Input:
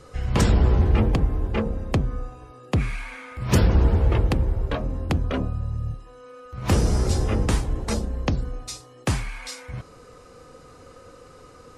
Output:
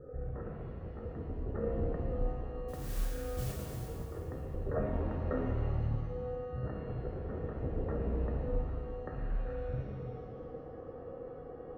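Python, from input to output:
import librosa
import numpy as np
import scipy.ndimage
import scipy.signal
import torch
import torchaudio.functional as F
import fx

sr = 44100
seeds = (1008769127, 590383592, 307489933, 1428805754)

y = fx.wiener(x, sr, points=41)
y = fx.over_compress(y, sr, threshold_db=-30.0, ratio=-1.0)
y = scipy.signal.sosfilt(scipy.signal.cheby1(6, 9, 1900.0, 'lowpass', fs=sr, output='sos'), y)
y = fx.mod_noise(y, sr, seeds[0], snr_db=14, at=(2.68, 3.88))
y = fx.rev_shimmer(y, sr, seeds[1], rt60_s=2.0, semitones=7, shimmer_db=-8, drr_db=-1.0)
y = y * 10.0 ** (-3.0 / 20.0)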